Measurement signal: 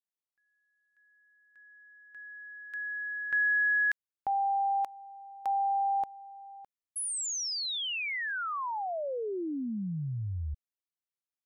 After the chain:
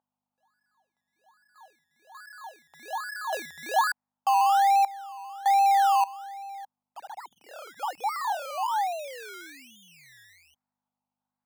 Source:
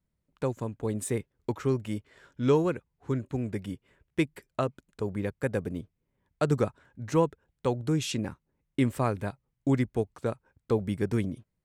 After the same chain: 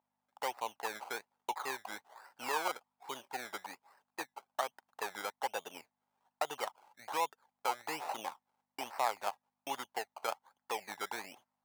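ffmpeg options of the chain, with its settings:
ffmpeg -i in.wav -filter_complex "[0:a]acrossover=split=3500[link_01][link_02];[link_01]alimiter=limit=-21.5dB:level=0:latency=1:release=241[link_03];[link_02]acompressor=threshold=-46dB:ratio=6:attack=3:release=86[link_04];[link_03][link_04]amix=inputs=2:normalize=0,acrusher=samples=19:mix=1:aa=0.000001:lfo=1:lforange=11.4:lforate=1.2,aeval=exprs='val(0)+0.00141*(sin(2*PI*50*n/s)+sin(2*PI*2*50*n/s)/2+sin(2*PI*3*50*n/s)/3+sin(2*PI*4*50*n/s)/4+sin(2*PI*5*50*n/s)/5)':channel_layout=same,highpass=frequency=830:width_type=q:width=4.9,volume=-3dB" out.wav

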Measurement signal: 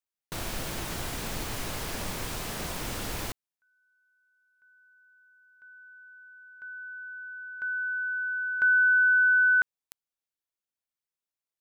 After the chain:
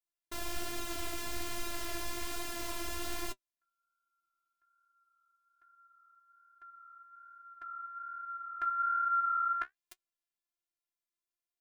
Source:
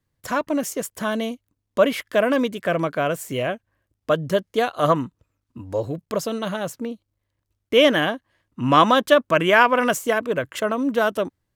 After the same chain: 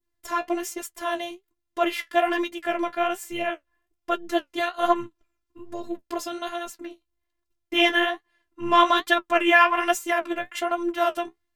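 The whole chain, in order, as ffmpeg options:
ffmpeg -i in.wav -af "adynamicequalizer=threshold=0.0224:dfrequency=2300:dqfactor=0.71:tfrequency=2300:tqfactor=0.71:attack=5:release=100:ratio=0.375:range=2.5:mode=boostabove:tftype=bell,afftfilt=real='hypot(re,im)*cos(PI*b)':imag='0':win_size=512:overlap=0.75,flanger=delay=7.9:depth=7.8:regen=42:speed=1.2:shape=sinusoidal,volume=3dB" out.wav

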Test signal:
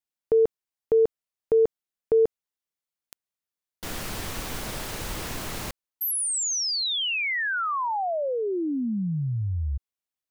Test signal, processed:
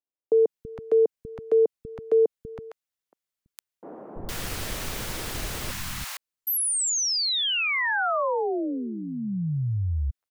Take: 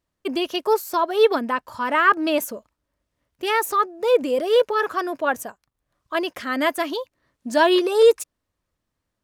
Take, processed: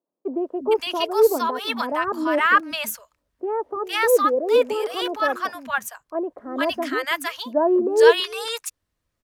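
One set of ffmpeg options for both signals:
ffmpeg -i in.wav -filter_complex "[0:a]acrossover=split=240|870[link_01][link_02][link_03];[link_01]adelay=330[link_04];[link_03]adelay=460[link_05];[link_04][link_02][link_05]amix=inputs=3:normalize=0,volume=1.5dB" out.wav

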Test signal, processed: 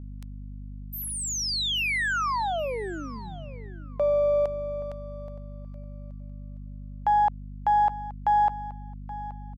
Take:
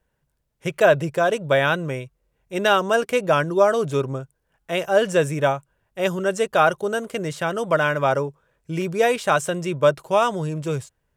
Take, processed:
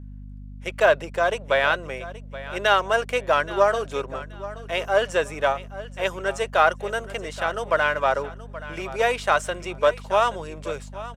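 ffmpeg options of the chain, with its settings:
ffmpeg -i in.wav -af "aeval=exprs='if(lt(val(0),0),0.708*val(0),val(0))':channel_layout=same,highpass=650,equalizer=frequency=890:width=0.31:gain=-6,aeval=exprs='val(0)+0.00501*(sin(2*PI*50*n/s)+sin(2*PI*2*50*n/s)/2+sin(2*PI*3*50*n/s)/3+sin(2*PI*4*50*n/s)/4+sin(2*PI*5*50*n/s)/5)':channel_layout=same,aemphasis=mode=reproduction:type=75kf,aecho=1:1:826|1652:0.158|0.0365,volume=8.5dB" out.wav

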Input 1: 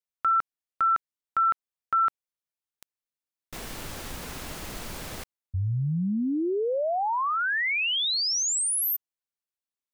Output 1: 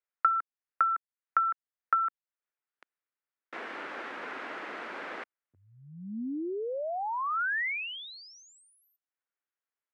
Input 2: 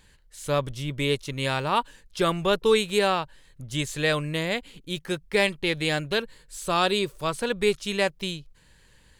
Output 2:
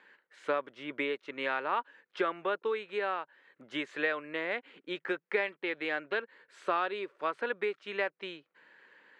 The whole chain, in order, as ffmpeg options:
ffmpeg -i in.wav -af "highpass=frequency=290:width=0.5412,highpass=frequency=290:width=1.3066,equalizer=frequency=1400:width_type=o:width=0.36:gain=3,acompressor=threshold=-35dB:ratio=4:attack=91:release=748:knee=1:detection=peak,lowpass=frequency=1900:width_type=q:width=1.6" out.wav

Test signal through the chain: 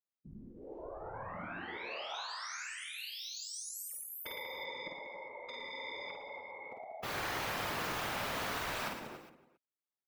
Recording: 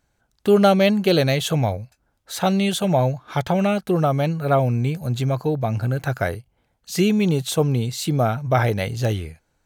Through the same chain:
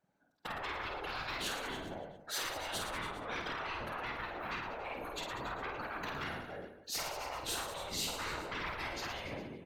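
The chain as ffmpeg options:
ffmpeg -i in.wav -filter_complex "[0:a]highpass=frequency=180:width=0.5412,highpass=frequency=180:width=1.3066,equalizer=frequency=8400:width=0.76:gain=-5,acompressor=threshold=-28dB:ratio=2.5,highshelf=frequency=2200:gain=-9,asoftclip=type=tanh:threshold=-31dB,afftfilt=real='hypot(re,im)*cos(2*PI*random(0))':imag='hypot(re,im)*sin(2*PI*random(1))':win_size=512:overlap=0.75,asplit=2[link_01][link_02];[link_02]aecho=0:1:277:0.2[link_03];[link_01][link_03]amix=inputs=2:normalize=0,afftfilt=real='re*lt(hypot(re,im),0.0158)':imag='im*lt(hypot(re,im),0.0158)':win_size=1024:overlap=0.75,afftdn=noise_reduction=12:noise_floor=-66,asplit=2[link_04][link_05];[link_05]aecho=0:1:50|112.5|190.6|288.3|410.4:0.631|0.398|0.251|0.158|0.1[link_06];[link_04][link_06]amix=inputs=2:normalize=0,volume=10.5dB" out.wav

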